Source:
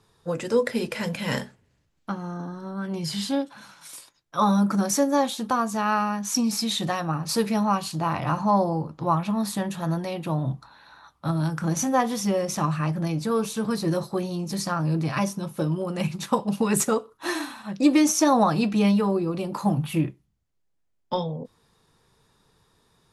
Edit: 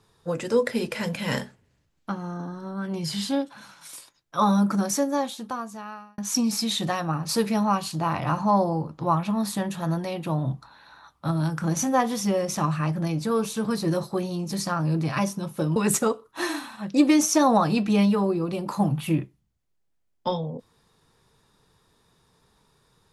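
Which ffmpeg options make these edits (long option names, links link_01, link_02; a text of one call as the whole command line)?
ffmpeg -i in.wav -filter_complex "[0:a]asplit=3[link_01][link_02][link_03];[link_01]atrim=end=6.18,asetpts=PTS-STARTPTS,afade=type=out:start_time=4.63:duration=1.55[link_04];[link_02]atrim=start=6.18:end=15.762,asetpts=PTS-STARTPTS,afade=type=in:duration=0.004:curve=hsin[link_05];[link_03]atrim=start=16.618[link_06];[link_04][link_05]concat=n=2:v=0:a=1[link_07];[link_07][link_06]acrossfade=duration=0.004:curve1=hsin:curve2=hsin" out.wav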